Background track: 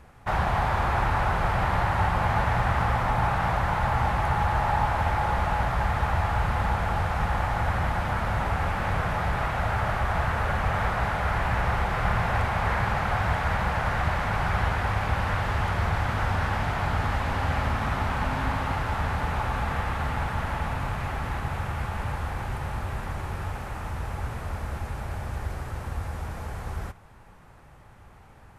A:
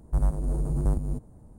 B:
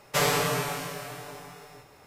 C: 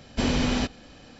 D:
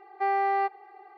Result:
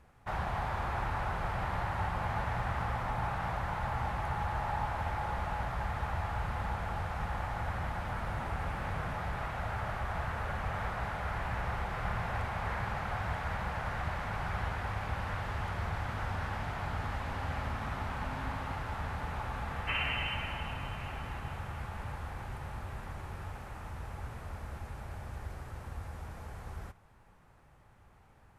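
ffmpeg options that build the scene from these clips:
-filter_complex "[0:a]volume=0.316[s0];[1:a]acompressor=threshold=0.0501:ratio=6:attack=3.2:release=140:knee=1:detection=peak[s1];[2:a]lowpass=f=2700:t=q:w=0.5098,lowpass=f=2700:t=q:w=0.6013,lowpass=f=2700:t=q:w=0.9,lowpass=f=2700:t=q:w=2.563,afreqshift=-3200[s2];[s1]atrim=end=1.58,asetpts=PTS-STARTPTS,volume=0.178,afade=t=in:d=0.004:c=hsin,afade=t=out:st=1.576:d=0.004:c=hsin,adelay=350154S[s3];[s2]atrim=end=2.06,asetpts=PTS-STARTPTS,volume=0.355,afade=t=in:d=0.004:c=hsin,afade=t=out:st=2.056:d=0.004:c=hsin,adelay=19730[s4];[s0][s3][s4]amix=inputs=3:normalize=0"

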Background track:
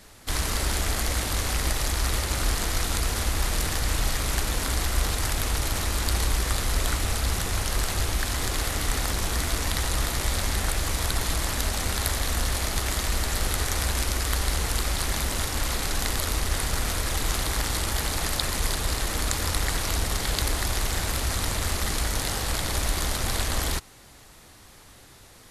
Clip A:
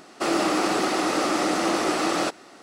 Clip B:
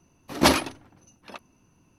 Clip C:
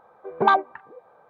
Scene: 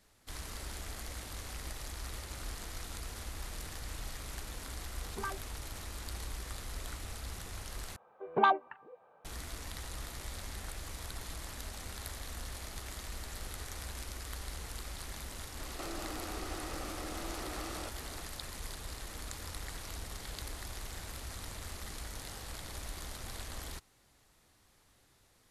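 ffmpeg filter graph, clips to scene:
-filter_complex "[3:a]asplit=2[s0][s1];[0:a]volume=0.141[s2];[s0]asplit=2[s3][s4];[s4]afreqshift=1.7[s5];[s3][s5]amix=inputs=2:normalize=1[s6];[s1]equalizer=f=2800:t=o:w=0.27:g=11[s7];[1:a]acompressor=threshold=0.0126:ratio=6:attack=3.2:release=140:knee=1:detection=peak[s8];[s2]asplit=2[s9][s10];[s9]atrim=end=7.964[s11];[s7]atrim=end=1.29,asetpts=PTS-STARTPTS,volume=0.398[s12];[s10]atrim=start=9.246[s13];[s6]atrim=end=1.29,asetpts=PTS-STARTPTS,volume=0.133,afade=t=in:d=0.004:c=hsin,afade=t=out:st=1.286:d=0.004:c=hsin,adelay=4760[s14];[s8]atrim=end=2.62,asetpts=PTS-STARTPTS,volume=0.668,afade=t=in:d=0.004:c=hsin,afade=t=out:st=2.616:d=0.004:c=hsin,adelay=15590[s15];[s11][s12]acrossfade=d=0.004:c1=hsin:c2=hsin[s16];[s16][s13]acrossfade=d=0.004:c1=hsin:c2=hsin[s17];[s17][s14][s15]amix=inputs=3:normalize=0"

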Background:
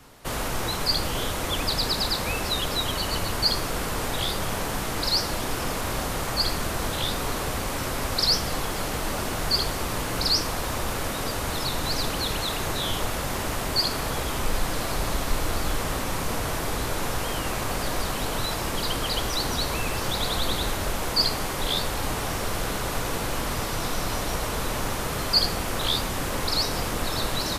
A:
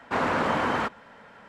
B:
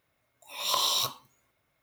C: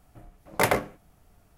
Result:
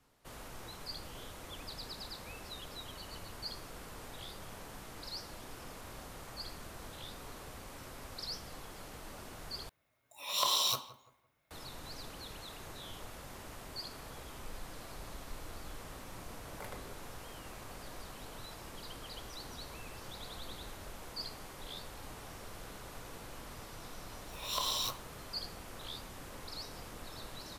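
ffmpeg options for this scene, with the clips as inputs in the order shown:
-filter_complex "[2:a]asplit=2[s0][s1];[0:a]volume=0.1[s2];[s0]asplit=2[s3][s4];[s4]adelay=169,lowpass=f=1500:p=1,volume=0.188,asplit=2[s5][s6];[s6]adelay=169,lowpass=f=1500:p=1,volume=0.36,asplit=2[s7][s8];[s8]adelay=169,lowpass=f=1500:p=1,volume=0.36[s9];[s3][s5][s7][s9]amix=inputs=4:normalize=0[s10];[3:a]acompressor=threshold=0.01:ratio=6:attack=3.2:release=140:knee=1:detection=peak[s11];[s2]asplit=2[s12][s13];[s12]atrim=end=9.694[s14];[s10]atrim=end=1.82,asetpts=PTS-STARTPTS,volume=0.668[s15];[s13]atrim=start=11.506[s16];[s11]atrim=end=1.57,asetpts=PTS-STARTPTS,volume=0.531,afade=t=in:d=0.004:c=hsin,afade=t=out:st=1.566:d=0.004:c=hsin,adelay=16010[s17];[s1]atrim=end=1.82,asetpts=PTS-STARTPTS,volume=0.398,afade=t=in:d=0.004:c=hsin,afade=t=out:st=1.816:d=0.004:c=hsin,adelay=23840[s18];[s14][s15]acrossfade=d=0.004:c1=hsin:c2=hsin[s19];[s19][s16]acrossfade=d=0.004:c1=hsin:c2=hsin[s20];[s20][s17][s18]amix=inputs=3:normalize=0"

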